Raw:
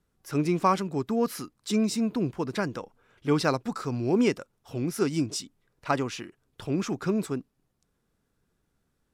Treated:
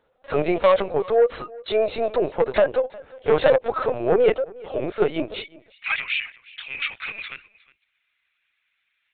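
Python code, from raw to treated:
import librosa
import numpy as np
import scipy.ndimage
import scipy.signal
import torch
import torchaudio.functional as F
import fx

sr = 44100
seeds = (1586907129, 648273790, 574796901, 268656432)

y = fx.rider(x, sr, range_db=3, speed_s=2.0)
y = fx.tube_stage(y, sr, drive_db=14.0, bias=0.3)
y = fx.highpass_res(y, sr, hz=fx.steps((0.0, 550.0), (5.35, 2300.0)), q=4.9)
y = fx.cheby_harmonics(y, sr, harmonics=(5,), levels_db=(-9,), full_scale_db=-8.5)
y = y + 10.0 ** (-22.0 / 20.0) * np.pad(y, (int(360 * sr / 1000.0), 0))[:len(y)]
y = fx.lpc_vocoder(y, sr, seeds[0], excitation='pitch_kept', order=16)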